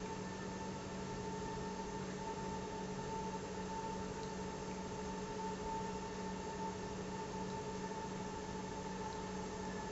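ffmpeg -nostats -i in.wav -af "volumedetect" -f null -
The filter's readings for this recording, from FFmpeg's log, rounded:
mean_volume: -43.8 dB
max_volume: -31.1 dB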